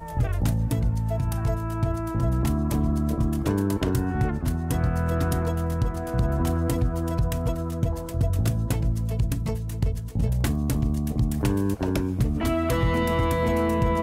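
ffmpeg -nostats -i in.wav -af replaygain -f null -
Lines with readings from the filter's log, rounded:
track_gain = +9.3 dB
track_peak = 0.173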